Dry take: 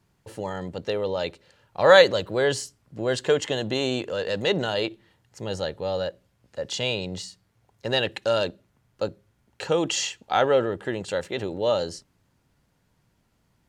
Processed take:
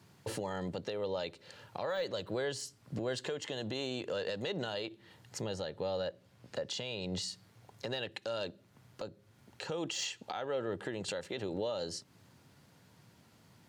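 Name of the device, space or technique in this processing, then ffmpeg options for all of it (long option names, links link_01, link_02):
broadcast voice chain: -filter_complex "[0:a]highpass=frequency=89:width=0.5412,highpass=frequency=89:width=1.3066,deesser=0.6,acompressor=threshold=-42dB:ratio=3,equalizer=frequency=4300:width_type=o:width=0.76:gain=3,alimiter=level_in=8.5dB:limit=-24dB:level=0:latency=1:release=217,volume=-8.5dB,asettb=1/sr,asplit=3[link_01][link_02][link_03];[link_01]atrim=end=5.424[link_04];[link_02]atrim=start=5.42:end=7.22,asetpts=PTS-STARTPTS,afade=type=in:duration=0.004:curve=qsin,afade=type=out:start_time=1.796:duration=0.004:curve=qsin,highshelf=frequency=5500:gain=-4.5[link_05];[link_03]atrim=start=7.216[link_06];[link_04][link_05]acrossfade=duration=0.004:curve1=hsin:curve2=qsin[link_07];[link_07][link_06]acrossfade=duration=0.004:curve1=qsin:curve2=hsin,volume=6.5dB"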